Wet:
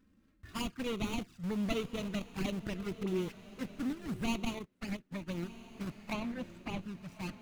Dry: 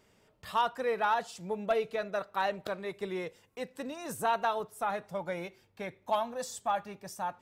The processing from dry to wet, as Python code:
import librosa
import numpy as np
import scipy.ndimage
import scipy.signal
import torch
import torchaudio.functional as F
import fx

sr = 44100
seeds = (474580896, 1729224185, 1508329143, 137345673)

p1 = scipy.signal.medfilt(x, 41)
p2 = fx.env_flanger(p1, sr, rest_ms=4.0, full_db=-34.0)
p3 = fx.band_shelf(p2, sr, hz=610.0, db=-14.0, octaves=1.3)
p4 = fx.schmitt(p3, sr, flips_db=-43.5)
p5 = p3 + (p4 * 10.0 ** (-7.0 / 20.0))
p6 = fx.dispersion(p5, sr, late='highs', ms=43.0, hz=900.0, at=(3.03, 3.59))
p7 = fx.high_shelf(p6, sr, hz=4000.0, db=-12.0, at=(6.13, 6.83))
p8 = p7 + fx.echo_diffused(p7, sr, ms=1168, feedback_pct=41, wet_db=-15.0, dry=0)
p9 = fx.upward_expand(p8, sr, threshold_db=-55.0, expansion=2.5, at=(4.59, 5.43))
y = p9 * 10.0 ** (6.5 / 20.0)